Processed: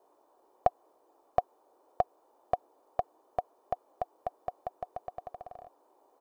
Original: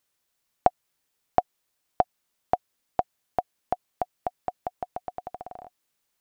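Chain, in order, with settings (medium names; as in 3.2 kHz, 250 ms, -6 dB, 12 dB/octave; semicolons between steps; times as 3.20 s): comb 1.7 ms, depth 68%; band noise 310–1000 Hz -59 dBFS; trim -7.5 dB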